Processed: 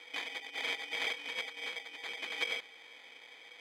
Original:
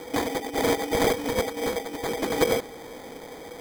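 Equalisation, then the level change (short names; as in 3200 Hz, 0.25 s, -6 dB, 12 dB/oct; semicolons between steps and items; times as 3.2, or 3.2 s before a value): band-pass 2700 Hz, Q 5.6; +5.5 dB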